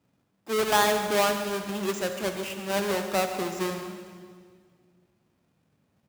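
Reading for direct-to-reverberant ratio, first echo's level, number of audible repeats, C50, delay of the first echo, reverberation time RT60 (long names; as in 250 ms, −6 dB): 6.0 dB, −14.5 dB, 1, 6.5 dB, 142 ms, 2.0 s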